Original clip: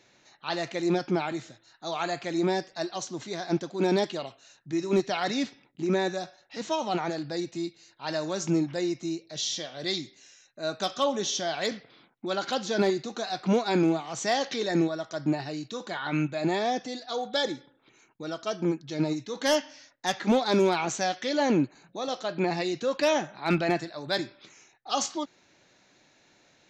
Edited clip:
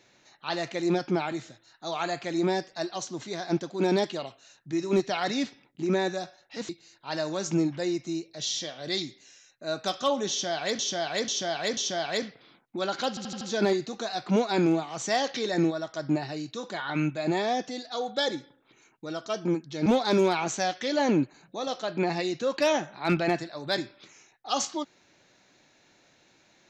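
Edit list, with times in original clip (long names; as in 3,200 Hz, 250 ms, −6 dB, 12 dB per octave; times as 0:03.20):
0:06.69–0:07.65: remove
0:11.26–0:11.75: repeat, 4 plays
0:12.58: stutter 0.08 s, 5 plays
0:19.03–0:20.27: remove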